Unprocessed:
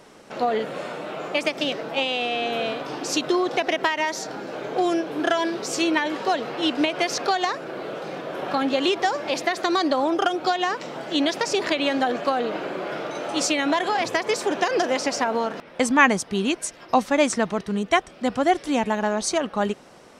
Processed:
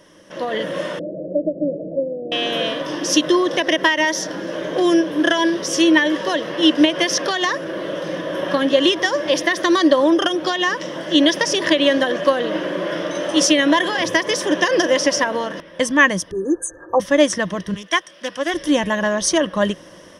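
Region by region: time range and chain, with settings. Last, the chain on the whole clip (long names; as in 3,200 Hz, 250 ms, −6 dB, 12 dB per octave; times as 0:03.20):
0:00.99–0:02.32: Butterworth low-pass 640 Hz 72 dB per octave + dynamic equaliser 430 Hz, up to −4 dB, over −36 dBFS, Q 1.2
0:16.31–0:17.00: spectral envelope exaggerated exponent 1.5 + linear-phase brick-wall band-stop 1,800–6,000 Hz + comb filter 2.4 ms, depth 91%
0:17.74–0:18.54: high-pass filter 1,200 Hz 6 dB per octave + highs frequency-modulated by the lows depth 0.13 ms
whole clip: parametric band 870 Hz −8 dB 0.44 octaves; automatic gain control gain up to 7.5 dB; EQ curve with evenly spaced ripples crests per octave 1.2, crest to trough 11 dB; level −1.5 dB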